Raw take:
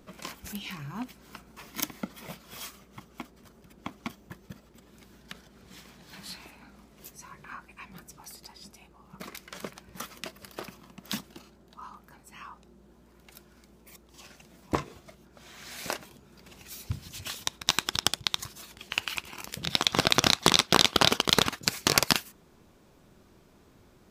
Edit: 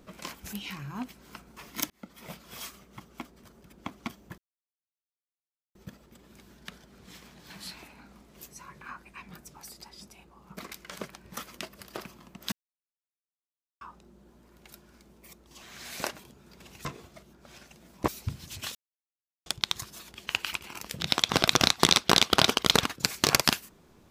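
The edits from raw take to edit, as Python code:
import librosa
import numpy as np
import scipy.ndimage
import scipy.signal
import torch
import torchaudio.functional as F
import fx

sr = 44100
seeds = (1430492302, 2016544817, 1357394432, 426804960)

y = fx.edit(x, sr, fx.fade_in_span(start_s=1.9, length_s=0.46),
    fx.insert_silence(at_s=4.38, length_s=1.37),
    fx.silence(start_s=11.15, length_s=1.29),
    fx.swap(start_s=14.25, length_s=0.52, other_s=15.48, other_length_s=1.23),
    fx.silence(start_s=17.38, length_s=0.71), tone=tone)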